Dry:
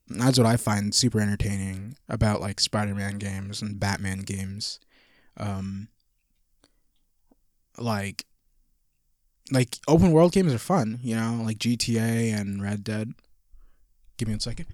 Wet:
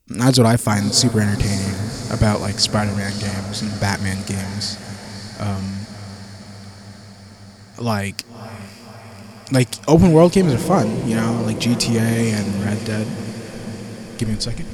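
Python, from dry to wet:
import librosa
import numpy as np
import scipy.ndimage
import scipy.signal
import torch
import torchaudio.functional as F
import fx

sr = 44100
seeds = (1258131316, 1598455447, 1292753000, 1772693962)

y = fx.echo_diffused(x, sr, ms=573, feedback_pct=72, wet_db=-12.5)
y = y * 10.0 ** (6.5 / 20.0)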